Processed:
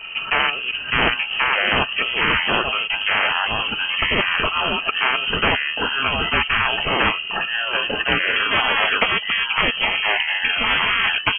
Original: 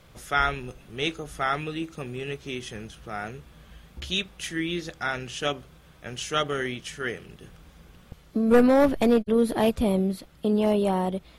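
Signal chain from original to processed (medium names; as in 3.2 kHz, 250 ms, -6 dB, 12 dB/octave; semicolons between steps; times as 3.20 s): comb 4.3 ms, depth 35%; transient shaper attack +3 dB, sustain -10 dB; small resonant body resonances 250/490/1700 Hz, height 17 dB; ever faster or slower copies 545 ms, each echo -3 st, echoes 3; frequency inversion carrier 3 kHz; spectrum-flattening compressor 10:1; trim -6 dB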